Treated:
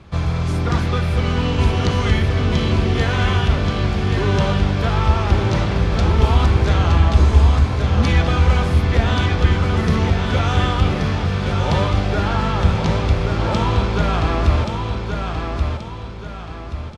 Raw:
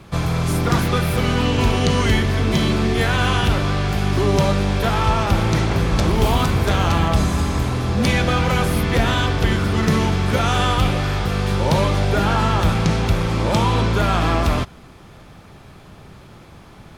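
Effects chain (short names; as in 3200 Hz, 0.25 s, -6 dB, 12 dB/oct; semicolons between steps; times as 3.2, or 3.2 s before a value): LPF 5800 Hz 12 dB/oct; bell 73 Hz +14.5 dB 0.38 oct; on a send: feedback echo 1.129 s, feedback 40%, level -5 dB; on the sum: gain -3 dB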